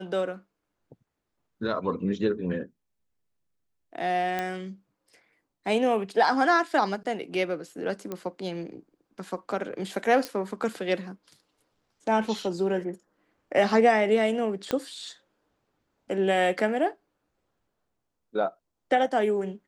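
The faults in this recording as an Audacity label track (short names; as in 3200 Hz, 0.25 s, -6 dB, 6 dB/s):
4.390000	4.390000	pop -15 dBFS
8.120000	8.120000	pop -19 dBFS
10.250000	10.250000	pop -15 dBFS
14.710000	14.710000	pop -13 dBFS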